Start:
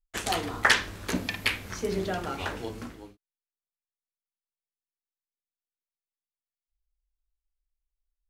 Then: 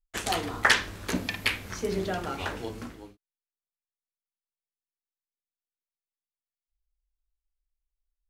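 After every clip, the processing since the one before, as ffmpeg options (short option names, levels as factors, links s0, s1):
-af anull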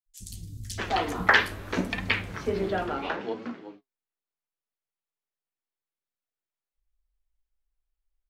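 -filter_complex "[0:a]highshelf=f=3700:g=-10,flanger=delay=3.5:depth=6.4:regen=64:speed=0.72:shape=triangular,acrossover=split=160|5600[s0][s1][s2];[s0]adelay=60[s3];[s1]adelay=640[s4];[s3][s4][s2]amix=inputs=3:normalize=0,volume=2.51"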